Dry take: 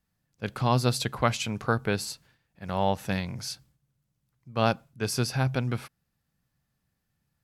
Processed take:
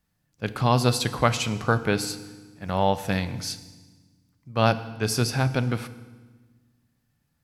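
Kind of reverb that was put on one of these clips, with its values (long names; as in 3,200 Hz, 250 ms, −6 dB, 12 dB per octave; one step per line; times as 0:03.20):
feedback delay network reverb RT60 1.3 s, low-frequency decay 1.55×, high-frequency decay 0.95×, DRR 11.5 dB
level +3.5 dB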